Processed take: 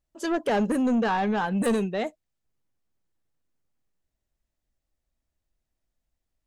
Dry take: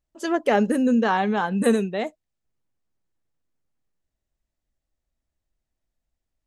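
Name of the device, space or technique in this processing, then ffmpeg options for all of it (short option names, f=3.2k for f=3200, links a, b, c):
saturation between pre-emphasis and de-emphasis: -af "highshelf=f=3.5k:g=8,asoftclip=type=tanh:threshold=-19dB,highshelf=f=3.5k:g=-8"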